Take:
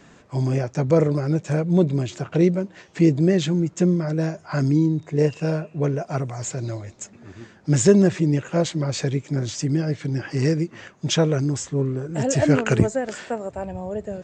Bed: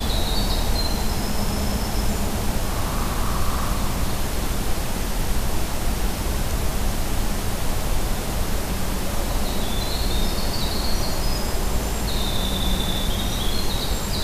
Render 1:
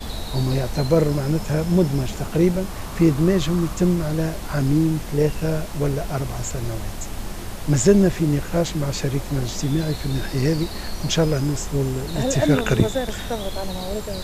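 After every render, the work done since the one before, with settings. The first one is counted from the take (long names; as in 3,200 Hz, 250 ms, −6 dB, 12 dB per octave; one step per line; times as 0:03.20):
mix in bed −7.5 dB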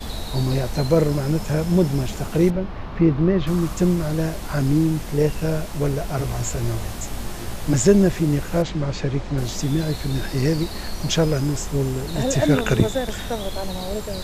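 0:02.50–0:03.47: high-frequency loss of the air 300 metres
0:06.17–0:07.74: double-tracking delay 17 ms −4 dB
0:08.62–0:09.38: high-frequency loss of the air 120 metres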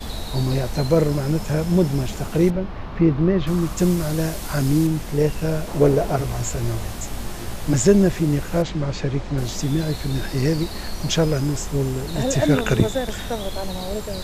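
0:03.78–0:04.87: high-shelf EQ 4,300 Hz +7.5 dB
0:05.67–0:06.16: parametric band 450 Hz +9.5 dB 2.2 octaves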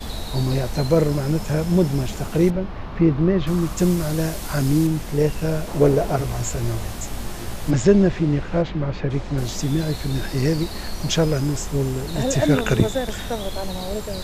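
0:07.70–0:09.09: low-pass filter 5,000 Hz → 2,700 Hz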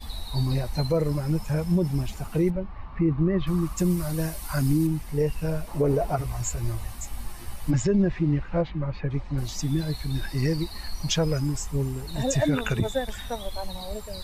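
spectral dynamics exaggerated over time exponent 1.5
brickwall limiter −14.5 dBFS, peak gain reduction 9.5 dB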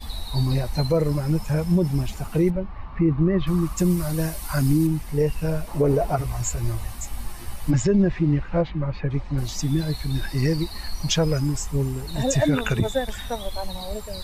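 level +3 dB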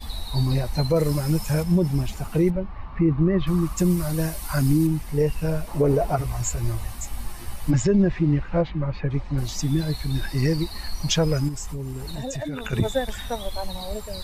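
0:00.96–0:01.63: high-shelf EQ 3,400 Hz +9 dB
0:11.48–0:12.73: downward compressor, threshold −27 dBFS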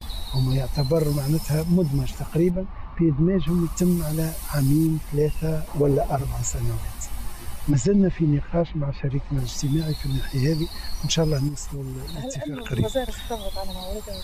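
noise gate with hold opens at −28 dBFS
dynamic equaliser 1,500 Hz, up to −4 dB, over −42 dBFS, Q 1.2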